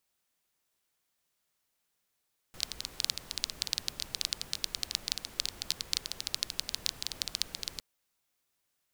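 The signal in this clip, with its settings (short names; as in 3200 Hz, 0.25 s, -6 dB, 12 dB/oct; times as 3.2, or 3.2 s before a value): rain from filtered ticks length 5.26 s, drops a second 13, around 4300 Hz, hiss -12.5 dB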